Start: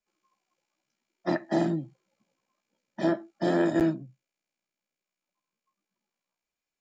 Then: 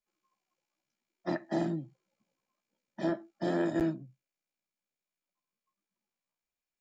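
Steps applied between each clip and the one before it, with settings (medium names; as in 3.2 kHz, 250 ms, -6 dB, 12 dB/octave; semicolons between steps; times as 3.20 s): bass shelf 91 Hz +5.5 dB; trim -6 dB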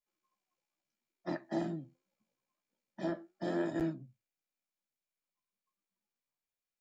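flange 0.78 Hz, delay 6.3 ms, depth 5.8 ms, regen +73%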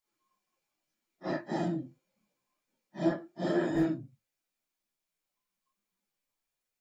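phase randomisation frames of 100 ms; trim +5.5 dB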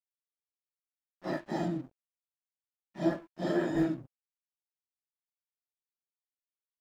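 crossover distortion -52.5 dBFS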